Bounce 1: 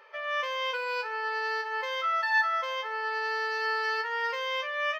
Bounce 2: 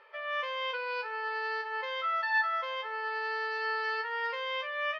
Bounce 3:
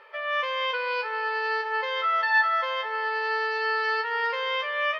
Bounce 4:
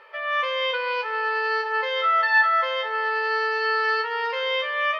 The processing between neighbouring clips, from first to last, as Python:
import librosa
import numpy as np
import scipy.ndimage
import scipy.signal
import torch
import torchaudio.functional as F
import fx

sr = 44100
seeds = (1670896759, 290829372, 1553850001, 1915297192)

y1 = scipy.signal.sosfilt(scipy.signal.butter(4, 4600.0, 'lowpass', fs=sr, output='sos'), x)
y1 = y1 * 10.0 ** (-3.0 / 20.0)
y2 = fx.echo_feedback(y1, sr, ms=232, feedback_pct=48, wet_db=-17)
y2 = y2 * 10.0 ** (6.5 / 20.0)
y3 = fx.room_shoebox(y2, sr, seeds[0], volume_m3=360.0, walls='furnished', distance_m=0.66)
y3 = y3 * 10.0 ** (1.5 / 20.0)